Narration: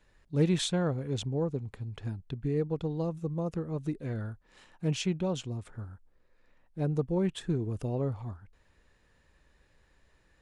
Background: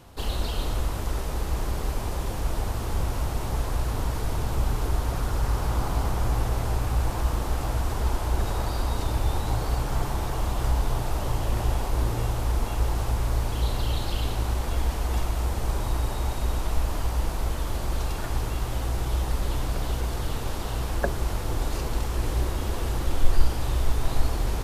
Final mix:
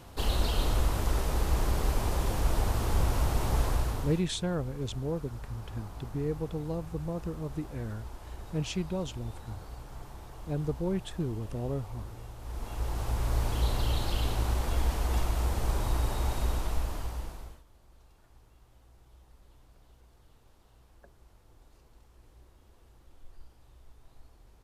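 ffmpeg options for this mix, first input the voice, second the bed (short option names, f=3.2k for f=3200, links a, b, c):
-filter_complex "[0:a]adelay=3700,volume=-2.5dB[a];[1:a]volume=15.5dB,afade=t=out:st=3.65:d=0.6:silence=0.125893,afade=t=in:st=12.39:d=1.07:silence=0.16788,afade=t=out:st=16.39:d=1.24:silence=0.0354813[b];[a][b]amix=inputs=2:normalize=0"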